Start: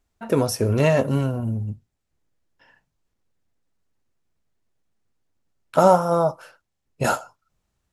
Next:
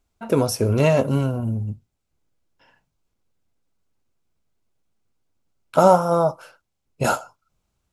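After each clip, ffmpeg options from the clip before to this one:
ffmpeg -i in.wav -af "bandreject=frequency=1800:width=7.4,volume=1dB" out.wav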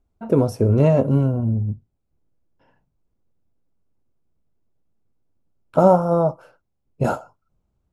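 ffmpeg -i in.wav -af "tiltshelf=frequency=1200:gain=9,volume=-5dB" out.wav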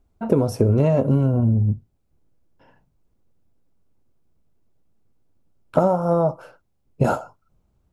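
ffmpeg -i in.wav -af "acompressor=threshold=-19dB:ratio=12,volume=5.5dB" out.wav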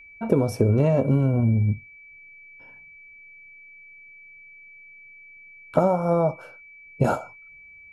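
ffmpeg -i in.wav -af "aeval=exprs='val(0)+0.00708*sin(2*PI*2300*n/s)':channel_layout=same,volume=-2dB" out.wav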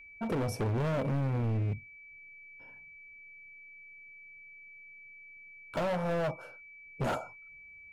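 ffmpeg -i in.wav -af "volume=24dB,asoftclip=hard,volume=-24dB,volume=-4.5dB" out.wav

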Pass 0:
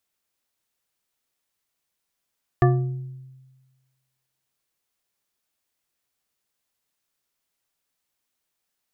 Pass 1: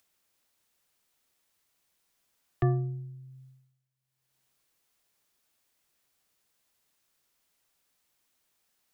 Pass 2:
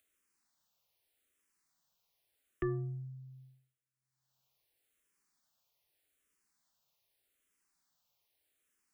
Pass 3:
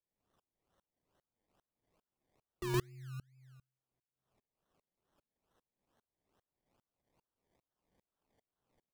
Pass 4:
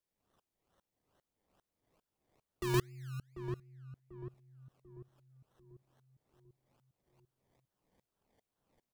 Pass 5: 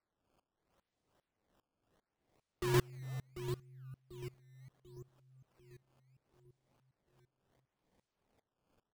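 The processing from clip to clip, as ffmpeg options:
ffmpeg -i in.wav -filter_complex "[0:a]acrossover=split=130|380[link_01][link_02][link_03];[link_03]alimiter=limit=-20.5dB:level=0:latency=1:release=54[link_04];[link_01][link_02][link_04]amix=inputs=3:normalize=0,agate=range=-33dB:threshold=-51dB:ratio=3:detection=peak,acompressor=mode=upward:threshold=-36dB:ratio=2.5,volume=-6dB" out.wav
ffmpeg -i in.wav -filter_complex "[0:a]asplit=2[link_01][link_02];[link_02]afreqshift=-0.82[link_03];[link_01][link_03]amix=inputs=2:normalize=1,volume=-2.5dB" out.wav
ffmpeg -i in.wav -filter_complex "[0:a]asplit=2[link_01][link_02];[link_02]adelay=116.6,volume=-6dB,highshelf=frequency=4000:gain=-2.62[link_03];[link_01][link_03]amix=inputs=2:normalize=0,acrusher=samples=26:mix=1:aa=0.000001:lfo=1:lforange=15.6:lforate=2.3,aeval=exprs='val(0)*pow(10,-31*if(lt(mod(-2.5*n/s,1),2*abs(-2.5)/1000),1-mod(-2.5*n/s,1)/(2*abs(-2.5)/1000),(mod(-2.5*n/s,1)-2*abs(-2.5)/1000)/(1-2*abs(-2.5)/1000))/20)':channel_layout=same,volume=5.5dB" out.wav
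ffmpeg -i in.wav -filter_complex "[0:a]asplit=2[link_01][link_02];[link_02]adelay=742,lowpass=frequency=830:poles=1,volume=-8dB,asplit=2[link_03][link_04];[link_04]adelay=742,lowpass=frequency=830:poles=1,volume=0.49,asplit=2[link_05][link_06];[link_06]adelay=742,lowpass=frequency=830:poles=1,volume=0.49,asplit=2[link_07][link_08];[link_08]adelay=742,lowpass=frequency=830:poles=1,volume=0.49,asplit=2[link_09][link_10];[link_10]adelay=742,lowpass=frequency=830:poles=1,volume=0.49,asplit=2[link_11][link_12];[link_12]adelay=742,lowpass=frequency=830:poles=1,volume=0.49[link_13];[link_01][link_03][link_05][link_07][link_09][link_11][link_13]amix=inputs=7:normalize=0,volume=2.5dB" out.wav
ffmpeg -i in.wav -af "acrusher=samples=13:mix=1:aa=0.000001:lfo=1:lforange=20.8:lforate=0.72" out.wav

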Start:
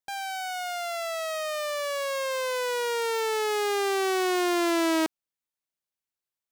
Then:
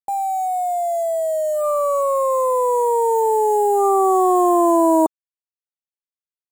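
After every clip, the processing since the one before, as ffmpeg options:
ffmpeg -i in.wav -af "afftfilt=real='re*(1-between(b*sr/4096,1200,6700))':imag='im*(1-between(b*sr/4096,1200,6700))':win_size=4096:overlap=0.75,equalizer=frequency=920:width=0.55:gain=9,aeval=exprs='sgn(val(0))*max(abs(val(0))-0.00282,0)':channel_layout=same,volume=5.5dB" out.wav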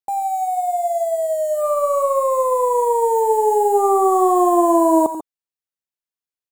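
ffmpeg -i in.wav -af "aecho=1:1:86|137|144:0.224|0.211|0.188" out.wav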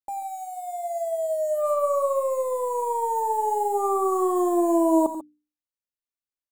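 ffmpeg -i in.wav -af "lowshelf=frequency=180:gain=7,bandreject=frequency=60:width_type=h:width=6,bandreject=frequency=120:width_type=h:width=6,bandreject=frequency=180:width_type=h:width=6,bandreject=frequency=240:width_type=h:width=6,bandreject=frequency=300:width_type=h:width=6,aecho=1:1:3.4:0.52,volume=-8.5dB" out.wav

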